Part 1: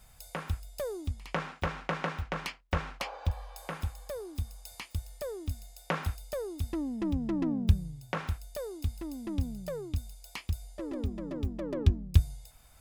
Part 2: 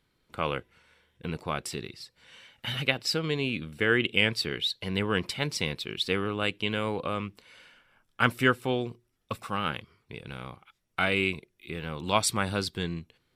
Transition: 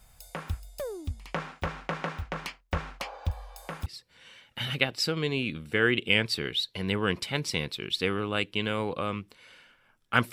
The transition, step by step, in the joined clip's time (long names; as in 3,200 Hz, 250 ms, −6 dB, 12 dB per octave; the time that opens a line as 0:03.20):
part 1
0:03.86: continue with part 2 from 0:01.93